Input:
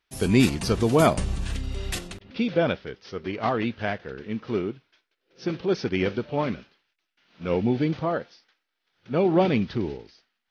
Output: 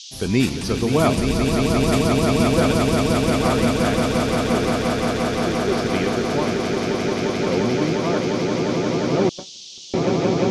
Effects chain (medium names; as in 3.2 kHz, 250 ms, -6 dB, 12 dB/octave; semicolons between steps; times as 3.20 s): echo with a slow build-up 175 ms, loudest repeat 8, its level -5 dB; 9.29–9.94 s: gate -12 dBFS, range -43 dB; band noise 3–6.4 kHz -39 dBFS